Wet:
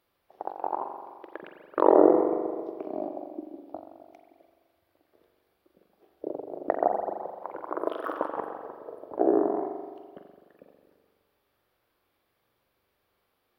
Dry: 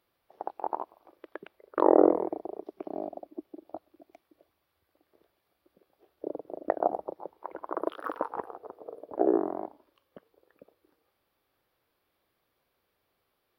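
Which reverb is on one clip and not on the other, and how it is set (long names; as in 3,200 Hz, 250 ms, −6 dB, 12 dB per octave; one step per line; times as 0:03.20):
spring reverb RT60 1.6 s, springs 42 ms, chirp 75 ms, DRR 3.5 dB
level +1 dB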